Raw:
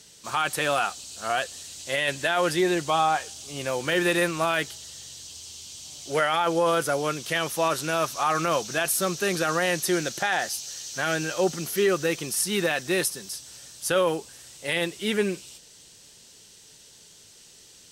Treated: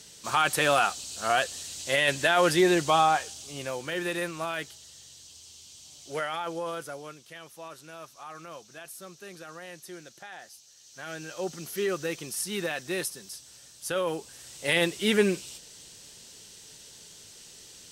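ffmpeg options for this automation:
ffmpeg -i in.wav -af "volume=22.5dB,afade=type=out:start_time=2.87:duration=1.01:silence=0.334965,afade=type=out:start_time=6.18:duration=1.1:silence=0.281838,afade=type=in:start_time=10.75:duration=1.09:silence=0.237137,afade=type=in:start_time=14.03:duration=0.67:silence=0.375837" out.wav

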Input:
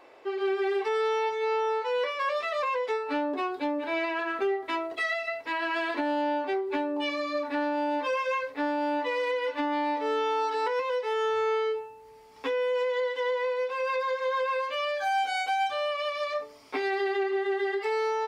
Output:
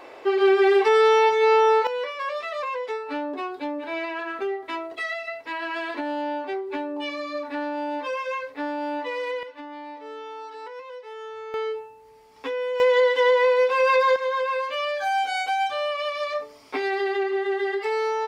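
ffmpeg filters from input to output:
ffmpeg -i in.wav -af "asetnsamples=nb_out_samples=441:pad=0,asendcmd='1.87 volume volume -0.5dB;9.43 volume volume -10dB;11.54 volume volume 0dB;12.8 volume volume 10dB;14.16 volume volume 3dB',volume=10dB" out.wav

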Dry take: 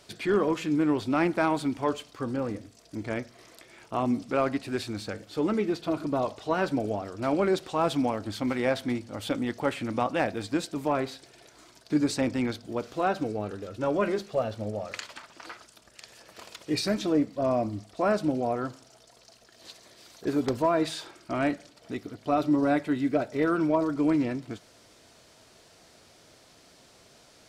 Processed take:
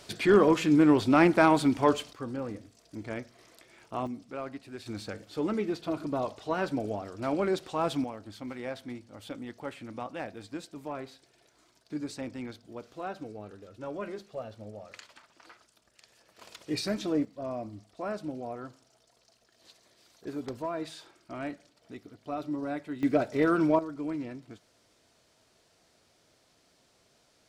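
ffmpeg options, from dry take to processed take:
ffmpeg -i in.wav -af "asetnsamples=nb_out_samples=441:pad=0,asendcmd='2.13 volume volume -5dB;4.07 volume volume -12dB;4.86 volume volume -3.5dB;8.04 volume volume -11dB;16.41 volume volume -4dB;17.25 volume volume -10dB;23.03 volume volume 0.5dB;23.79 volume volume -10dB',volume=4dB" out.wav

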